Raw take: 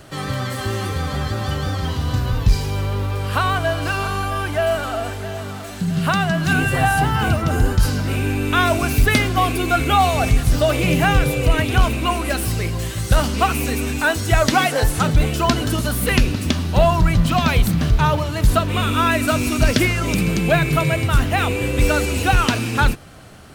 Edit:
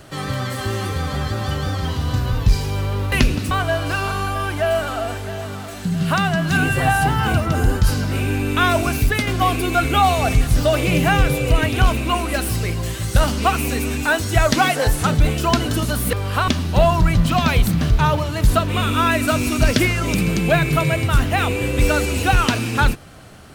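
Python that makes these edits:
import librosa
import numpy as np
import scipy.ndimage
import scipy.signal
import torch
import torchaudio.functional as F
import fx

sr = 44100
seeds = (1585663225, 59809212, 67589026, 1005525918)

y = fx.edit(x, sr, fx.swap(start_s=3.12, length_s=0.35, other_s=16.09, other_length_s=0.39),
    fx.fade_out_to(start_s=8.84, length_s=0.39, floor_db=-6.5), tone=tone)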